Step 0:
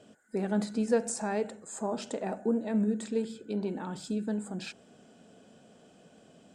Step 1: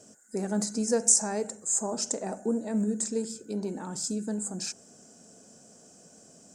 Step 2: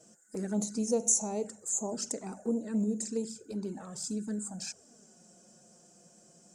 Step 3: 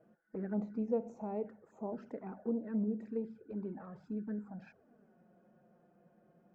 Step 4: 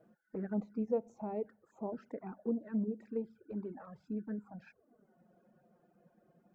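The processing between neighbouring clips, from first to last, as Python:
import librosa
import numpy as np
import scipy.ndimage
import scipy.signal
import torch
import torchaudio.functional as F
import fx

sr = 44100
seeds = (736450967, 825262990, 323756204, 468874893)

y1 = fx.high_shelf_res(x, sr, hz=4500.0, db=11.0, q=3.0)
y2 = fx.env_flanger(y1, sr, rest_ms=6.7, full_db=-25.5)
y2 = y2 * 10.0 ** (-2.0 / 20.0)
y3 = scipy.signal.sosfilt(scipy.signal.butter(4, 2000.0, 'lowpass', fs=sr, output='sos'), y2)
y3 = y3 * 10.0 ** (-4.0 / 20.0)
y4 = fx.dereverb_blind(y3, sr, rt60_s=0.91)
y4 = y4 * 10.0 ** (1.0 / 20.0)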